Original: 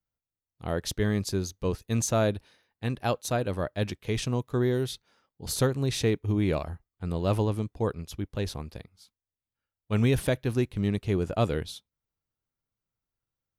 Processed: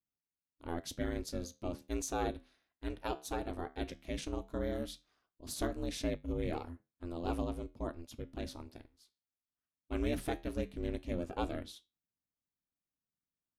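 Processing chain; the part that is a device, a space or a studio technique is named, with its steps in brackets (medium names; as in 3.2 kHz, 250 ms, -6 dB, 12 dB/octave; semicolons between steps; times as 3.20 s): alien voice (ring modulator 170 Hz; flange 0.16 Hz, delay 10 ms, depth 4.7 ms, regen -75%); trim -3 dB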